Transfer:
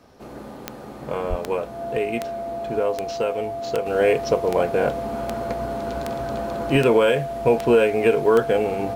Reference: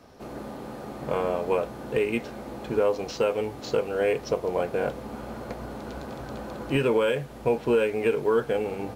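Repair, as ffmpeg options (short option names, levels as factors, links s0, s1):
-filter_complex "[0:a]adeclick=t=4,bandreject=f=680:w=30,asplit=3[s0][s1][s2];[s0]afade=t=out:st=1.29:d=0.02[s3];[s1]highpass=f=140:w=0.5412,highpass=f=140:w=1.3066,afade=t=in:st=1.29:d=0.02,afade=t=out:st=1.41:d=0.02[s4];[s2]afade=t=in:st=1.41:d=0.02[s5];[s3][s4][s5]amix=inputs=3:normalize=0,asetnsamples=n=441:p=0,asendcmd='3.86 volume volume -6dB',volume=1"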